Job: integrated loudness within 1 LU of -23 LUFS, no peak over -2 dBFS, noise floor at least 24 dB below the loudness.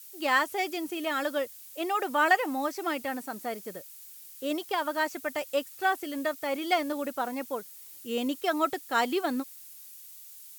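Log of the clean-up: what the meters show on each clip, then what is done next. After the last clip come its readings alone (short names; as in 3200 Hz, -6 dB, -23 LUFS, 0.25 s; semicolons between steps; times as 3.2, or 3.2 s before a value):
noise floor -48 dBFS; noise floor target -54 dBFS; loudness -30.0 LUFS; peak -11.0 dBFS; loudness target -23.0 LUFS
-> noise print and reduce 6 dB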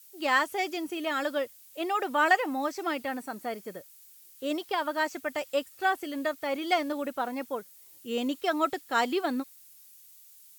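noise floor -54 dBFS; loudness -30.0 LUFS; peak -11.0 dBFS; loudness target -23.0 LUFS
-> gain +7 dB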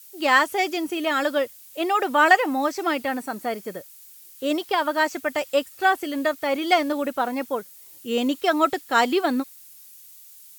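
loudness -23.0 LUFS; peak -4.0 dBFS; noise floor -47 dBFS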